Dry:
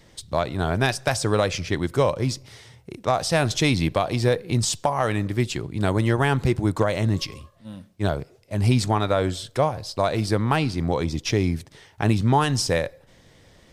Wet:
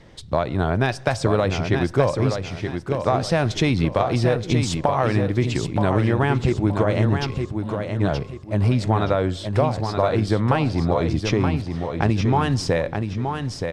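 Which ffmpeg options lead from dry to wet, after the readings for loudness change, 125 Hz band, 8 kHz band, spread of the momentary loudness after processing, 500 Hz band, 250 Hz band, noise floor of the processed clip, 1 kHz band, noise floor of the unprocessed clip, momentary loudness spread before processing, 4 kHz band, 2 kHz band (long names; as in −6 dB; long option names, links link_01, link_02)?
+1.5 dB, +3.0 dB, −6.0 dB, 6 LU, +2.5 dB, +3.0 dB, −37 dBFS, +1.5 dB, −55 dBFS, 8 LU, −2.0 dB, 0.0 dB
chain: -filter_complex "[0:a]aemphasis=mode=reproduction:type=75fm,acompressor=threshold=-22dB:ratio=3,asplit=2[link_01][link_02];[link_02]aecho=0:1:924|1848|2772|3696:0.501|0.155|0.0482|0.0149[link_03];[link_01][link_03]amix=inputs=2:normalize=0,volume=5dB"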